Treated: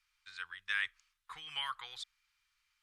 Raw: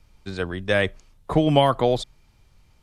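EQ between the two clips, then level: inverse Chebyshev high-pass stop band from 670 Hz, stop band 40 dB; tilt -2 dB/oct; -6.5 dB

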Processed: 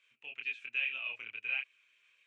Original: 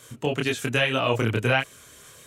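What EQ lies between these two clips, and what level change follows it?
band-pass 2500 Hz, Q 10; air absorption 54 m; -3.0 dB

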